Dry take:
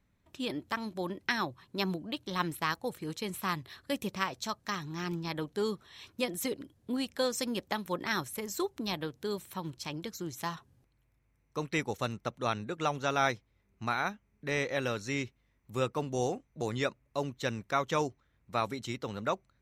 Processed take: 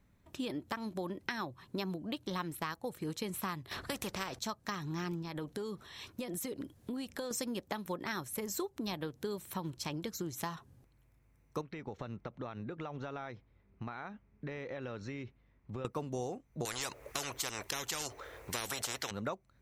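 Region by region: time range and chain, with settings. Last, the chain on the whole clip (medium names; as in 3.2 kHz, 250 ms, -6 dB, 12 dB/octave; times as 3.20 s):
3.71–4.39 s: low-pass 2.8 kHz 6 dB/octave + spectrum-flattening compressor 2:1
5.22–7.31 s: compression, threshold -39 dBFS + tape noise reduction on one side only encoder only
11.61–15.85 s: compression 10:1, threshold -41 dBFS + distance through air 210 m
16.65–19.11 s: resonant low shelf 310 Hz -13.5 dB, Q 3 + spectrum-flattening compressor 10:1
whole clip: peaking EQ 3.3 kHz -3.5 dB 2.3 oct; compression, threshold -40 dBFS; trim +5 dB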